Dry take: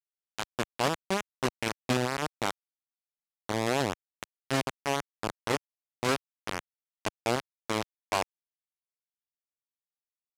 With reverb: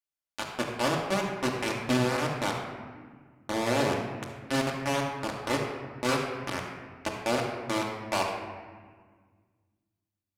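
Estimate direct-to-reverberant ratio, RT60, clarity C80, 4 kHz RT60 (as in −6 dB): −1.5 dB, 1.6 s, 4.0 dB, 1.0 s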